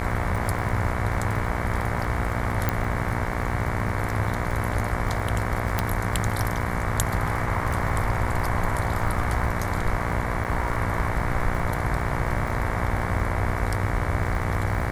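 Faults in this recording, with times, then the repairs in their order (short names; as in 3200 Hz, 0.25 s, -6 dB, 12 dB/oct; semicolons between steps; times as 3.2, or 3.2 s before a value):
buzz 60 Hz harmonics 38 -30 dBFS
crackle 42/s -31 dBFS
2.69 pop -8 dBFS
5.79 pop -7 dBFS
10.44–10.45 gap 8.5 ms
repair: de-click; de-hum 60 Hz, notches 38; interpolate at 10.44, 8.5 ms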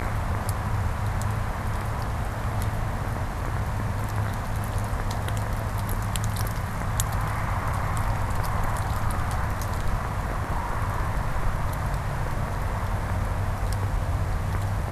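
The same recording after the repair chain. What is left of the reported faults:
5.79 pop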